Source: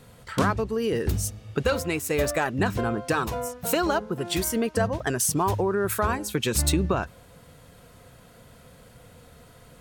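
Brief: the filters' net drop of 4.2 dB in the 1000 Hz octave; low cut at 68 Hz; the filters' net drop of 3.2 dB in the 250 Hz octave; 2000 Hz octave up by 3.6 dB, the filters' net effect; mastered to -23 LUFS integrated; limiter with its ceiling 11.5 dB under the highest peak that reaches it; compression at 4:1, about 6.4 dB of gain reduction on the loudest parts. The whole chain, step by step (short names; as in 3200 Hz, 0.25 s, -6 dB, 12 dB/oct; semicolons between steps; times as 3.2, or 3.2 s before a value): HPF 68 Hz; bell 250 Hz -4 dB; bell 1000 Hz -8 dB; bell 2000 Hz +8 dB; compressor 4:1, threshold -28 dBFS; gain +13 dB; limiter -13.5 dBFS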